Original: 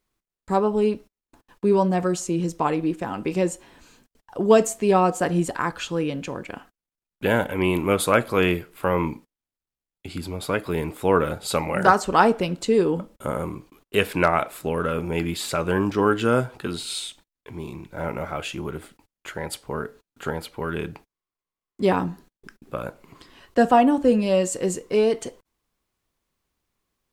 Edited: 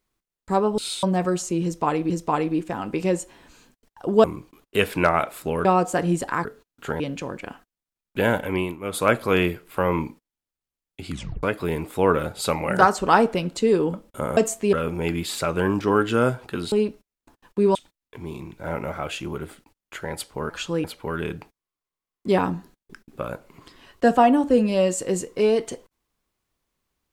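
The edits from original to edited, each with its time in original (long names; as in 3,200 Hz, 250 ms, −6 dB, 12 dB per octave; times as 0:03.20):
0:00.78–0:01.81: swap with 0:16.83–0:17.08
0:02.42–0:02.88: repeat, 2 plays
0:04.56–0:04.92: swap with 0:13.43–0:14.84
0:05.72–0:06.06: swap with 0:19.83–0:20.38
0:07.55–0:08.16: duck −16.5 dB, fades 0.30 s
0:10.16: tape stop 0.33 s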